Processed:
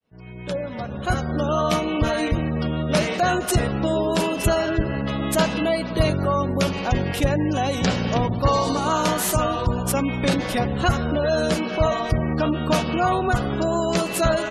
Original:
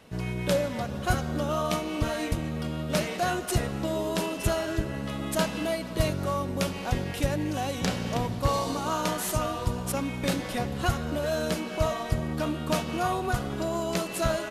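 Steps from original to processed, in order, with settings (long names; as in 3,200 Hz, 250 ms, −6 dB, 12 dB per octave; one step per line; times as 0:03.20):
fade in at the beginning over 1.75 s
harmonic generator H 2 −27 dB, 4 −31 dB, 5 −23 dB, 6 −35 dB, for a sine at −12.5 dBFS
gate on every frequency bin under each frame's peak −30 dB strong
level +5.5 dB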